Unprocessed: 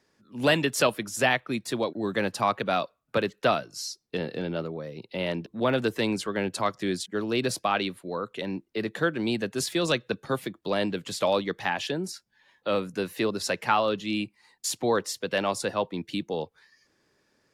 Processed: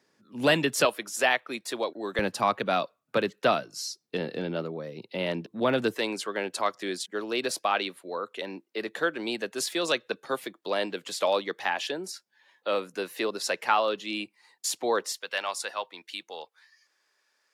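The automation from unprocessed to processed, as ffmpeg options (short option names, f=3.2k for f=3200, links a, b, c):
-af "asetnsamples=n=441:p=0,asendcmd='0.85 highpass f 410;2.19 highpass f 150;5.94 highpass f 380;15.12 highpass f 930',highpass=140"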